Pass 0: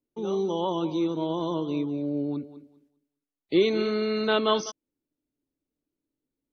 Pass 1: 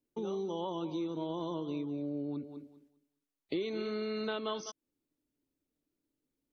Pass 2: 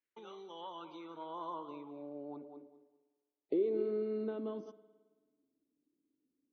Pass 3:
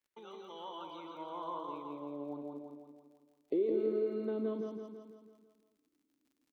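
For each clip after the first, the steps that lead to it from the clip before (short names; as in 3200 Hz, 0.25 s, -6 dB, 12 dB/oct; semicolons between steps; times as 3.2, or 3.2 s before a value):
compressor 4:1, threshold -35 dBFS, peak gain reduction 15.5 dB
band-pass sweep 1900 Hz -> 280 Hz, 0.51–4.44; spring tank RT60 1.4 s, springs 54 ms, chirp 50 ms, DRR 14.5 dB; gain +5.5 dB
crackle 39/s -61 dBFS; on a send: feedback echo 0.166 s, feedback 54%, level -4 dB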